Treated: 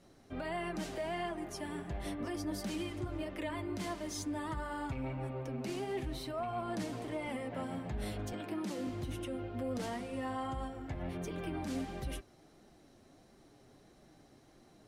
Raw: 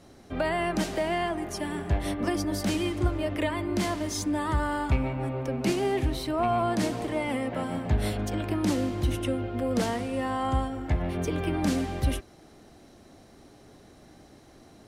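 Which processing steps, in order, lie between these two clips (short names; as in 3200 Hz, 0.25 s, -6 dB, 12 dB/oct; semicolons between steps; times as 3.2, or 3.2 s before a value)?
8.32–8.87 HPF 140 Hz 24 dB/oct; limiter -21 dBFS, peak gain reduction 7.5 dB; flange 1.5 Hz, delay 4.9 ms, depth 3.3 ms, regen -40%; gain -5 dB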